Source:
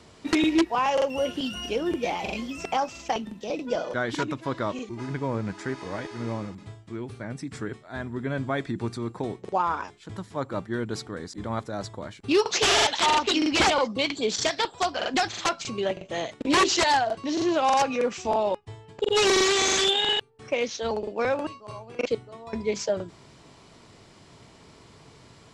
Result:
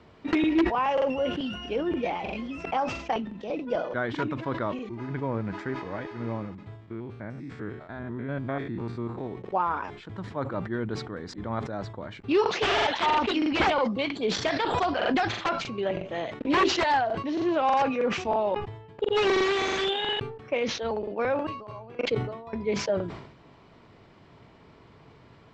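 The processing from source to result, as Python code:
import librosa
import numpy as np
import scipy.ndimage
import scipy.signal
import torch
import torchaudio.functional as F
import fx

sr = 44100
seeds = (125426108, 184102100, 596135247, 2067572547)

y = fx.spec_steps(x, sr, hold_ms=100, at=(6.77, 9.31), fade=0.02)
y = fx.pre_swell(y, sr, db_per_s=22.0, at=(14.26, 15.29))
y = scipy.signal.sosfilt(scipy.signal.butter(2, 2600.0, 'lowpass', fs=sr, output='sos'), y)
y = fx.sustainer(y, sr, db_per_s=71.0)
y = y * librosa.db_to_amplitude(-1.5)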